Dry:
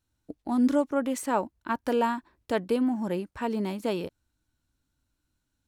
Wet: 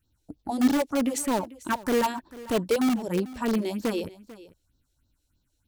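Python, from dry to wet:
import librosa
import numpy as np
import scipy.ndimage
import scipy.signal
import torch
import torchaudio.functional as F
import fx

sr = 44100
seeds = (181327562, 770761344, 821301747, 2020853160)

p1 = fx.phaser_stages(x, sr, stages=4, low_hz=170.0, high_hz=2200.0, hz=3.2, feedback_pct=30)
p2 = (np.mod(10.0 ** (23.5 / 20.0) * p1 + 1.0, 2.0) - 1.0) / 10.0 ** (23.5 / 20.0)
p3 = p1 + F.gain(torch.from_numpy(p2), -7.0).numpy()
p4 = p3 + 10.0 ** (-18.5 / 20.0) * np.pad(p3, (int(444 * sr / 1000.0), 0))[:len(p3)]
y = F.gain(torch.from_numpy(p4), 2.5).numpy()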